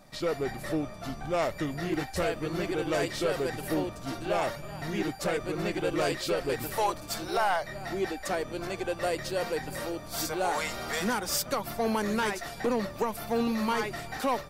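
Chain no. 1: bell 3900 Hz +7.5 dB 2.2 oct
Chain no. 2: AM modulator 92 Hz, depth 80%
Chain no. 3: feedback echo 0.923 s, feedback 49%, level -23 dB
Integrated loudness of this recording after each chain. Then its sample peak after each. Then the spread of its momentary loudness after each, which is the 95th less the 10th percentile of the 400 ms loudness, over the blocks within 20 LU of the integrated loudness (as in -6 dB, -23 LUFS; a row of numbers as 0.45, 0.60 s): -29.0, -35.0, -31.0 LUFS; -13.0, -18.0, -17.5 dBFS; 6, 5, 5 LU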